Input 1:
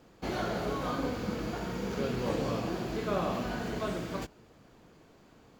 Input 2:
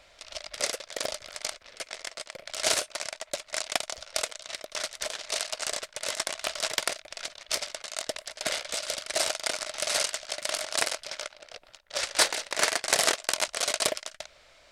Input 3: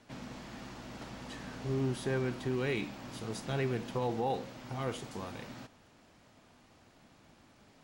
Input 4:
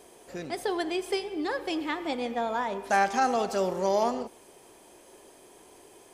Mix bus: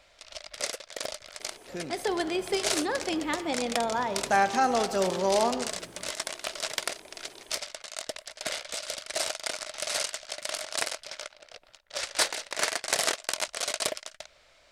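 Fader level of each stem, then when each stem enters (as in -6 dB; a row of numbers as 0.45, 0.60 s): -13.5 dB, -3.0 dB, off, +0.5 dB; 1.85 s, 0.00 s, off, 1.40 s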